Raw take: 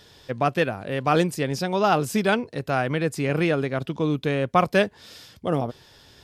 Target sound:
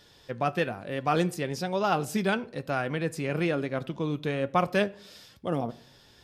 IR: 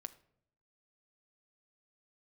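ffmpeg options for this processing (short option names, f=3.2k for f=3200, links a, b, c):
-filter_complex "[0:a]flanger=delay=3.4:depth=2:regen=77:speed=1.1:shape=sinusoidal,asplit=2[a][b];[1:a]atrim=start_sample=2205[c];[b][c]afir=irnorm=-1:irlink=0,volume=6.5dB[d];[a][d]amix=inputs=2:normalize=0,volume=-8dB"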